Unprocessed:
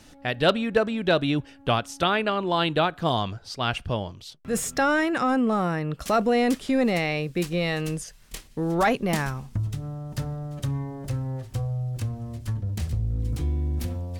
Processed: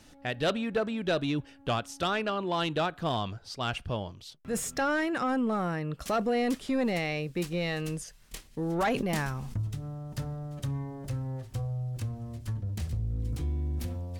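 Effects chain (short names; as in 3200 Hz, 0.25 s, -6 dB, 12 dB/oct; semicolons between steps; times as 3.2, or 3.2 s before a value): soft clip -15.5 dBFS, distortion -17 dB; 8.44–9.62 sustainer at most 32 dB/s; gain -4.5 dB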